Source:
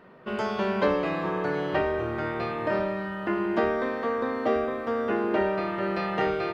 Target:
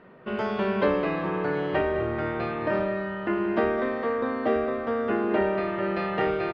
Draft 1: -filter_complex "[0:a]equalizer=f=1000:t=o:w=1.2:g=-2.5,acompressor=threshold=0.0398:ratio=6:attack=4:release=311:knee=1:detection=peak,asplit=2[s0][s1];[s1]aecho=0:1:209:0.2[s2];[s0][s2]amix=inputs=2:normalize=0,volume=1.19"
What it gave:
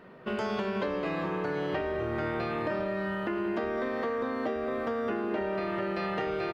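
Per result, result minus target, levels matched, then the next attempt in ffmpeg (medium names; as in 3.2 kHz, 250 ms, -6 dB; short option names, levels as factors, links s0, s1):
compression: peak gain reduction +10.5 dB; 4 kHz band +3.5 dB
-filter_complex "[0:a]equalizer=f=1000:t=o:w=1.2:g=-2.5,asplit=2[s0][s1];[s1]aecho=0:1:209:0.2[s2];[s0][s2]amix=inputs=2:normalize=0,volume=1.19"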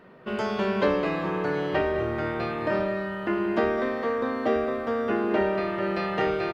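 4 kHz band +3.0 dB
-filter_complex "[0:a]lowpass=3300,equalizer=f=1000:t=o:w=1.2:g=-2.5,asplit=2[s0][s1];[s1]aecho=0:1:209:0.2[s2];[s0][s2]amix=inputs=2:normalize=0,volume=1.19"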